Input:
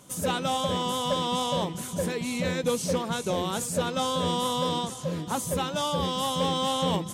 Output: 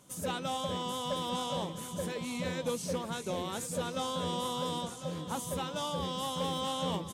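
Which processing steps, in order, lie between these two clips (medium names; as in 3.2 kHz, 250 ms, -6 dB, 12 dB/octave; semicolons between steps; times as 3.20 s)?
delay 1052 ms -12 dB; trim -7.5 dB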